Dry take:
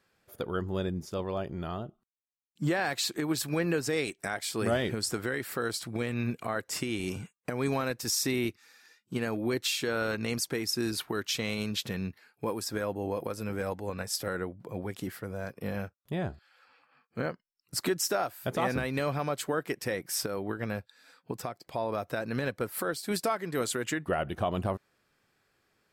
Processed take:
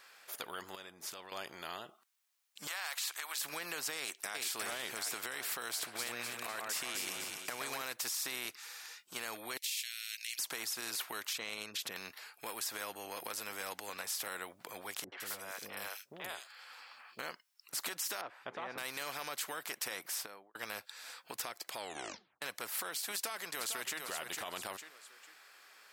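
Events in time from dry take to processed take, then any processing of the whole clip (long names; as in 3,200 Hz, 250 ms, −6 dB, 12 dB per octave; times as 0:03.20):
0:00.75–0:01.32: downward compressor, threshold −41 dBFS
0:02.67–0:03.38: high-pass filter 870 Hz 24 dB per octave
0:03.98–0:04.38: delay throw 360 ms, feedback 50%, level −4.5 dB
0:05.70–0:07.82: delay that swaps between a low-pass and a high-pass 125 ms, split 1,900 Hz, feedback 57%, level −2.5 dB
0:09.57–0:10.39: Butterworth high-pass 2,300 Hz 48 dB per octave
0:11.33–0:11.96: spectral envelope exaggerated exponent 1.5
0:15.04–0:17.19: three-band delay without the direct sound lows, mids, highs 80/160 ms, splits 490/3,000 Hz
0:18.21–0:18.78: low-pass filter 1,000 Hz
0:19.88–0:20.55: fade out and dull
0:21.75: tape stop 0.67 s
0:23.13–0:24.00: delay throw 450 ms, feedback 20%, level −11 dB
whole clip: high-pass filter 920 Hz 12 dB per octave; brickwall limiter −28 dBFS; every bin compressed towards the loudest bin 2 to 1; level +7 dB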